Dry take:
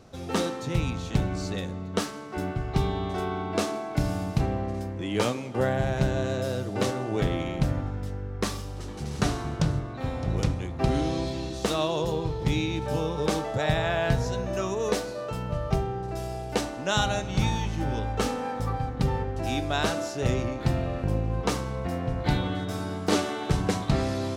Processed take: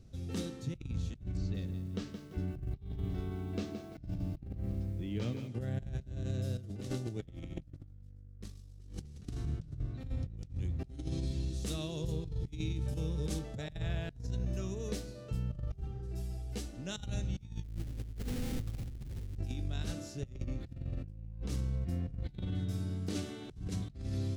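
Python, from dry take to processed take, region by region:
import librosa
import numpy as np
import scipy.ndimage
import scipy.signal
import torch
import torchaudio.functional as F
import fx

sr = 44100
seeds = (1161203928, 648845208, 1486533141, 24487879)

y = fx.chain(x, sr, fx.air_absorb(metres=130.0),
    fx.echo_crushed(ms=170, feedback_pct=35, bits=8, wet_db=-9.5), at=(1.37, 5.48))
y = fx.chain(y, sr, fx.echo_wet_highpass(ms=129, feedback_pct=48, hz=3700.0, wet_db=-7.5),
    fx.env_flatten(amount_pct=70), at=(6.58, 9.25))
y = fx.chain(y, sr, fx.peak_eq(hz=9600.0, db=5.5, octaves=1.1),
    fx.echo_single(ms=430, db=-22.5), at=(10.79, 13.39))
y = fx.chain(y, sr, fx.high_shelf(hz=7200.0, db=5.5),
    fx.ensemble(), at=(15.8, 16.75))
y = fx.chain(y, sr, fx.lowpass(hz=2800.0, slope=24),
    fx.schmitt(flips_db=-34.0), at=(17.63, 19.37))
y = fx.tone_stack(y, sr, knobs='10-0-1')
y = fx.over_compress(y, sr, threshold_db=-43.0, ratio=-0.5)
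y = y * 10.0 ** (6.0 / 20.0)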